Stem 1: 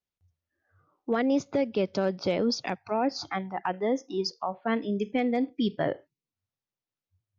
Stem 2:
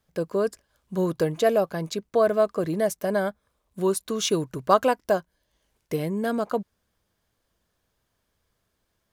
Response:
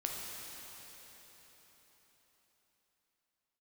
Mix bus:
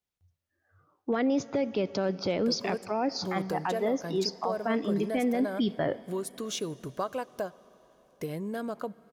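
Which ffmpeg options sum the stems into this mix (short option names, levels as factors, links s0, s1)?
-filter_complex "[0:a]volume=1.06,asplit=2[s0][s1];[s1]volume=0.106[s2];[1:a]acompressor=threshold=0.0447:ratio=2.5,adelay=2300,volume=0.501,asplit=2[s3][s4];[s4]volume=0.1[s5];[2:a]atrim=start_sample=2205[s6];[s2][s5]amix=inputs=2:normalize=0[s7];[s7][s6]afir=irnorm=-1:irlink=0[s8];[s0][s3][s8]amix=inputs=3:normalize=0,alimiter=limit=0.106:level=0:latency=1:release=10"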